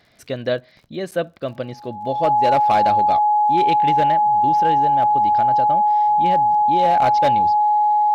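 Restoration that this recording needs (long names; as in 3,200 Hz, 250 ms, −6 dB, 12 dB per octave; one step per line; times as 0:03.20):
clipped peaks rebuilt −10 dBFS
click removal
notch filter 840 Hz, Q 30
repair the gap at 0:01.11, 8 ms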